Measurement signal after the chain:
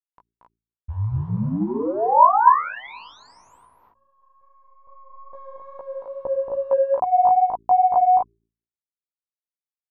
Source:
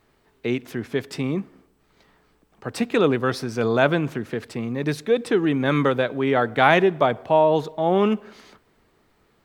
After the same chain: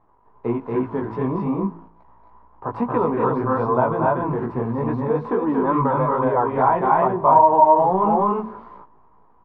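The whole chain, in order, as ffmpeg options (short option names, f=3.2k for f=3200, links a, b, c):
-filter_complex "[0:a]acrusher=bits=9:dc=4:mix=0:aa=0.000001,asplit=2[a][b];[b]aecho=0:1:230.3|265.3:0.631|0.794[c];[a][c]amix=inputs=2:normalize=0,acompressor=threshold=-18dB:ratio=10,asplit=2[d][e];[e]asoftclip=type=hard:threshold=-25dB,volume=-8dB[f];[d][f]amix=inputs=2:normalize=0,lowpass=f=990:t=q:w=11,bandreject=f=56.54:t=h:w=4,bandreject=f=113.08:t=h:w=4,bandreject=f=169.62:t=h:w=4,bandreject=f=226.16:t=h:w=4,bandreject=f=282.7:t=h:w=4,bandreject=f=339.24:t=h:w=4,bandreject=f=395.78:t=h:w=4,flanger=delay=15.5:depth=3.7:speed=2.4,lowshelf=f=180:g=6"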